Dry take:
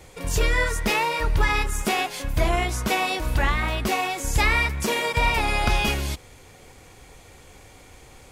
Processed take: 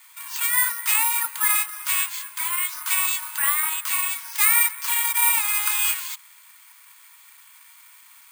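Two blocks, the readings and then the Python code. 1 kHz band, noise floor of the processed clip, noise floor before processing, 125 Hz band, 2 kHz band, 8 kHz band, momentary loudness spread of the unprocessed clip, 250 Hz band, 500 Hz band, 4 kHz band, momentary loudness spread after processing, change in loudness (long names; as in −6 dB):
−5.0 dB, −51 dBFS, −49 dBFS, below −40 dB, −1.0 dB, +11.0 dB, 4 LU, below −40 dB, below −40 dB, −1.0 dB, 8 LU, +3.5 dB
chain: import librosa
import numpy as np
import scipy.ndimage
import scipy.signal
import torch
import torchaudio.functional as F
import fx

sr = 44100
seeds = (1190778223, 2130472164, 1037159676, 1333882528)

y = scipy.signal.sosfilt(scipy.signal.butter(16, 920.0, 'highpass', fs=sr, output='sos'), x)
y = (np.kron(scipy.signal.resample_poly(y, 1, 4), np.eye(4)[0]) * 4)[:len(y)]
y = y * 10.0 ** (-1.0 / 20.0)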